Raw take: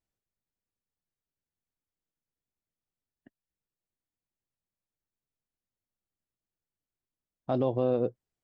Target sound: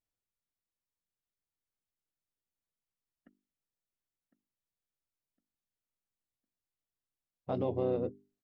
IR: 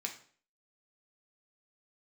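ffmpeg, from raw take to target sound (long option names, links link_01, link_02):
-filter_complex "[0:a]asplit=2[link_01][link_02];[link_02]asetrate=33038,aresample=44100,atempo=1.33484,volume=-5dB[link_03];[link_01][link_03]amix=inputs=2:normalize=0,bandreject=frequency=50:width_type=h:width=6,bandreject=frequency=100:width_type=h:width=6,bandreject=frequency=150:width_type=h:width=6,bandreject=frequency=200:width_type=h:width=6,bandreject=frequency=250:width_type=h:width=6,bandreject=frequency=300:width_type=h:width=6,bandreject=frequency=350:width_type=h:width=6,bandreject=frequency=400:width_type=h:width=6,asplit=2[link_04][link_05];[link_05]adelay=1057,lowpass=frequency=2000:poles=1,volume=-13dB,asplit=2[link_06][link_07];[link_07]adelay=1057,lowpass=frequency=2000:poles=1,volume=0.4,asplit=2[link_08][link_09];[link_09]adelay=1057,lowpass=frequency=2000:poles=1,volume=0.4,asplit=2[link_10][link_11];[link_11]adelay=1057,lowpass=frequency=2000:poles=1,volume=0.4[link_12];[link_04][link_06][link_08][link_10][link_12]amix=inputs=5:normalize=0,volume=-6dB"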